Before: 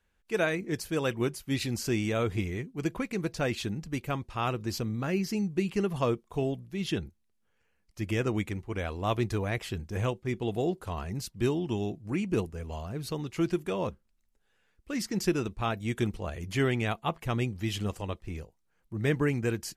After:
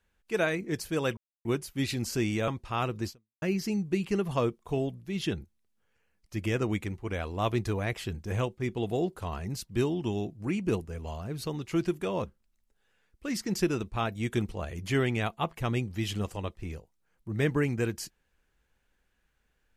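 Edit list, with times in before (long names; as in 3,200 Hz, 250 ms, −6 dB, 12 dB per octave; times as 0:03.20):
0:01.17: splice in silence 0.28 s
0:02.20–0:04.13: remove
0:04.72–0:05.07: fade out exponential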